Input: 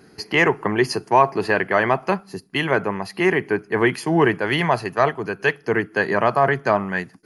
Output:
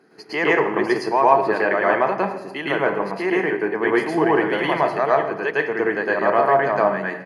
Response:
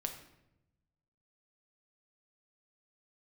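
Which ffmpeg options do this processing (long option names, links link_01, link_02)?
-filter_complex "[0:a]highpass=290,highshelf=frequency=3200:gain=-11.5,bandreject=frequency=2800:width=26,aecho=1:1:271:0.075,asplit=2[link_01][link_02];[1:a]atrim=start_sample=2205,adelay=110[link_03];[link_02][link_03]afir=irnorm=-1:irlink=0,volume=4.5dB[link_04];[link_01][link_04]amix=inputs=2:normalize=0,volume=-3.5dB"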